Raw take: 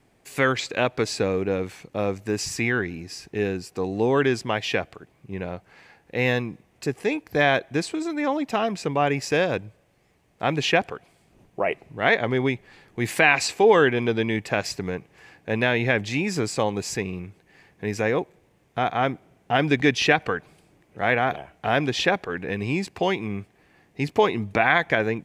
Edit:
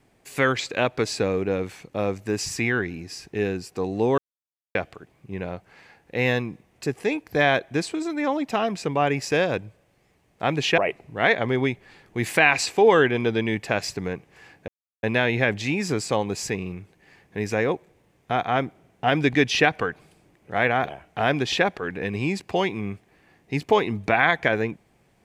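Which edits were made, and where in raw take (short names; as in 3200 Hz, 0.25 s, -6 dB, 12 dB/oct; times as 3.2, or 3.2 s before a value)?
4.18–4.75 mute
10.78–11.6 cut
15.5 insert silence 0.35 s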